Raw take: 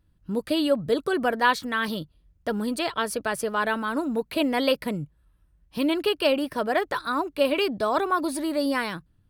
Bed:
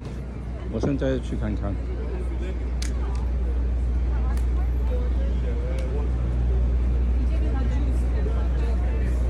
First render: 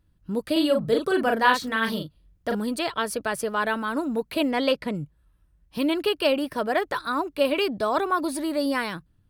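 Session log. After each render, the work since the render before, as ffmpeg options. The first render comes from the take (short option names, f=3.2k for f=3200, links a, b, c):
-filter_complex "[0:a]asettb=1/sr,asplit=3[a][b][c];[a]atrim=end=0.524[d];[b]atrim=start=0.52:end=2.55,asetpts=PTS-STARTPTS,afade=t=in:d=0.004:c=qsin,afade=t=out:st=2.026:d=0.004:c=qsin,asplit=2[e][f];[f]adelay=40,volume=-4dB[g];[e][g]amix=inputs=2:normalize=0,atrim=end_sample=89523[h];[c]atrim=start=2.546[i];[d][h]acrossfade=d=0.004:c1=hsin:c2=qsin[j];[j][i]acrossfade=d=0.004:c1=qsin:c2=hsin,asettb=1/sr,asplit=3[k][l][m];[k]atrim=end=4.514[n];[l]atrim=start=4.51:end=4.95,asetpts=PTS-STARTPTS,afade=t=in:d=0.004:c=qsin,afade=t=out:st=0.436:d=0.004:c=qsin,adynamicsmooth=sensitivity=1.5:basefreq=7.5k[o];[m]atrim=start=4.946[p];[n][o]acrossfade=d=0.004:c1=hsin:c2=qsin[q];[q][p]acrossfade=d=0.004:c1=qsin:c2=hsin"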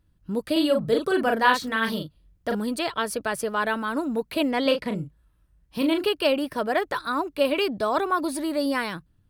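-filter_complex "[0:a]asettb=1/sr,asplit=3[a][b][c];[a]atrim=end=4.624[d];[b]atrim=start=4.62:end=6.04,asetpts=PTS-STARTPTS,afade=t=in:d=0.004:c=qsin,afade=t=out:st=1.416:d=0.004:c=qsin,asplit=2[e][f];[f]adelay=37,volume=-7dB[g];[e][g]amix=inputs=2:normalize=0,atrim=end_sample=62622[h];[c]atrim=start=6.036[i];[d][h]acrossfade=d=0.004:c1=hsin:c2=qsin[j];[j][i]acrossfade=d=0.004:c1=qsin:c2=hsin"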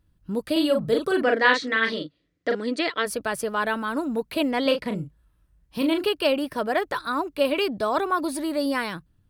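-filter_complex "[0:a]asplit=3[a][b][c];[a]afade=t=out:st=1.22:d=0.02[d];[b]highpass=190,equalizer=f=200:t=q:w=4:g=-7,equalizer=f=290:t=q:w=4:g=8,equalizer=f=490:t=q:w=4:g=5,equalizer=f=880:t=q:w=4:g=-8,equalizer=f=2k:t=q:w=4:g=10,equalizer=f=3.9k:t=q:w=4:g=3,lowpass=f=6.9k:w=0.5412,lowpass=f=6.9k:w=1.3066,afade=t=in:st=1.22:d=0.02,afade=t=out:st=3.05:d=0.02[e];[c]afade=t=in:st=3.05:d=0.02[f];[d][e][f]amix=inputs=3:normalize=0"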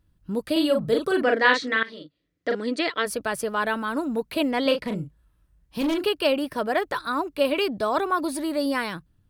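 -filter_complex "[0:a]asettb=1/sr,asplit=3[a][b][c];[a]atrim=end=4.874[d];[b]atrim=start=4.87:end=6.06,asetpts=PTS-STARTPTS,afade=t=in:d=0.004:c=qsin,afade=t=out:st=1.186:d=0.004:c=qsin,volume=20dB,asoftclip=hard,volume=-20dB[e];[c]atrim=start=6.056[f];[d][e]acrossfade=d=0.004:c1=hsin:c2=qsin[g];[g][f]acrossfade=d=0.004:c1=qsin:c2=hsin,asplit=2[h][i];[h]atrim=end=1.83,asetpts=PTS-STARTPTS,afade=t=out:st=1.826:d=0.004:c=hsin:silence=0.11885[j];[i]atrim=start=1.83,asetpts=PTS-STARTPTS,afade=t=in:d=0.76:silence=0.11885[k];[j][k]concat=n=2:v=0:a=1"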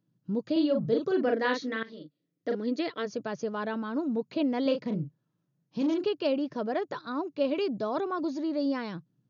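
-af "afftfilt=real='re*between(b*sr/4096,110,6900)':imag='im*between(b*sr/4096,110,6900)':win_size=4096:overlap=0.75,equalizer=f=2.1k:w=0.33:g=-13"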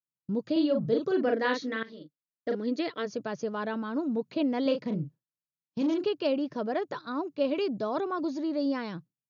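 -af "agate=range=-33dB:threshold=-41dB:ratio=3:detection=peak"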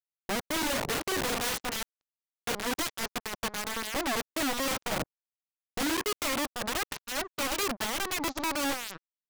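-af "aresample=16000,acrusher=bits=4:mix=0:aa=0.5,aresample=44100,aeval=exprs='(mod(17.8*val(0)+1,2)-1)/17.8':c=same"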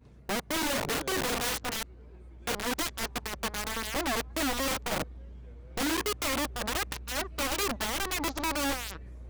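-filter_complex "[1:a]volume=-22dB[a];[0:a][a]amix=inputs=2:normalize=0"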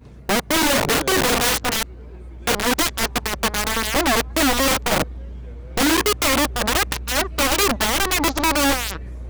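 -af "volume=12dB"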